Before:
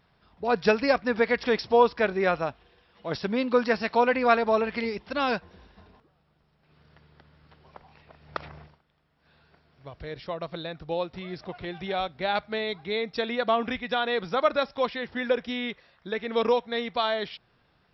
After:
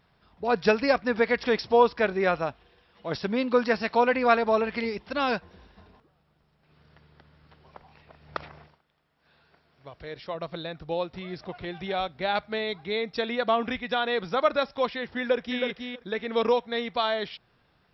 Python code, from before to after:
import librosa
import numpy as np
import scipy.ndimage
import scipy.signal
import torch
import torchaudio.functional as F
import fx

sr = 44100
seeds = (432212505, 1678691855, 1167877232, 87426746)

y = fx.low_shelf(x, sr, hz=200.0, db=-7.5, at=(8.44, 10.35))
y = fx.echo_throw(y, sr, start_s=15.19, length_s=0.44, ms=320, feedback_pct=10, wet_db=-5.0)